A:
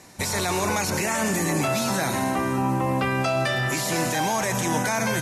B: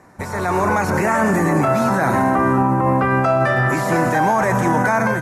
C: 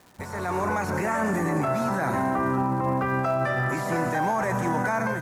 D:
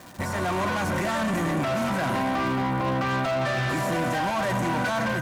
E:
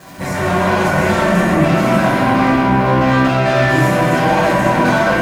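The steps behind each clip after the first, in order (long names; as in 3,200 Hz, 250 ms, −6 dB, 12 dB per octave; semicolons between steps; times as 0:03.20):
high shelf with overshoot 2,200 Hz −13.5 dB, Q 1.5; brickwall limiter −16.5 dBFS, peak gain reduction 4.5 dB; automatic gain control gain up to 7 dB; level +1.5 dB
surface crackle 360 per second −33 dBFS; level −8.5 dB
in parallel at −1.5 dB: speech leveller within 5 dB; on the sum: soft clipping −25.5 dBFS, distortion −8 dB; notch comb filter 430 Hz; level +3 dB
convolution reverb RT60 2.5 s, pre-delay 6 ms, DRR −9 dB; level +2 dB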